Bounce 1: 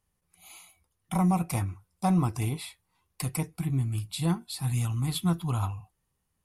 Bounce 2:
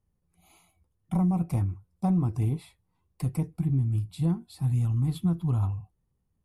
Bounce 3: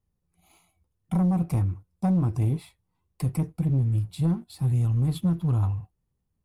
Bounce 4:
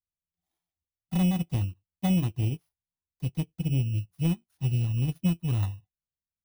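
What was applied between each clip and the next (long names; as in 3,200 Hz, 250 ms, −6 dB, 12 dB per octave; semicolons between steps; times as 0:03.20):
tilt shelving filter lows +9 dB, about 760 Hz; downward compressor, threshold −17 dBFS, peak gain reduction 5 dB; level −4 dB
leveller curve on the samples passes 1
samples in bit-reversed order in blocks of 16 samples; expander for the loud parts 2.5 to 1, over −37 dBFS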